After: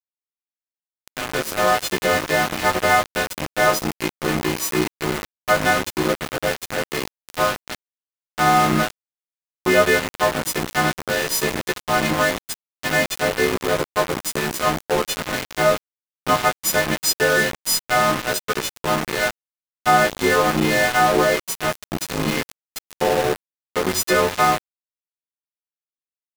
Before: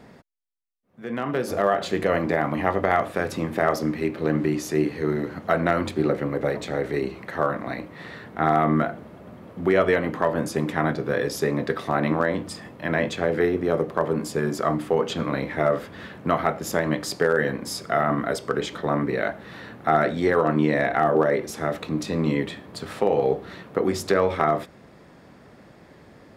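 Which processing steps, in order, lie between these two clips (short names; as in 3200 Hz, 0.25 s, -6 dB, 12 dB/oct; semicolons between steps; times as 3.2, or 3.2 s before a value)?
frequency quantiser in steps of 3 st; sample gate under -21 dBFS; gain +2.5 dB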